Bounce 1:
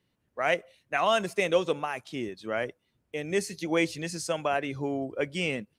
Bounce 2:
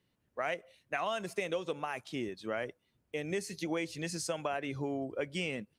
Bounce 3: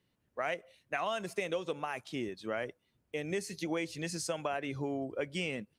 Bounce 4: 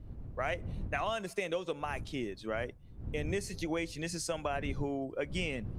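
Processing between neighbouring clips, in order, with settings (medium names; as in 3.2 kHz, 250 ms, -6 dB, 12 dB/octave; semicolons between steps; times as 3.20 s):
compression 6:1, threshold -29 dBFS, peak gain reduction 11 dB; trim -2 dB
no audible change
wind noise 110 Hz -43 dBFS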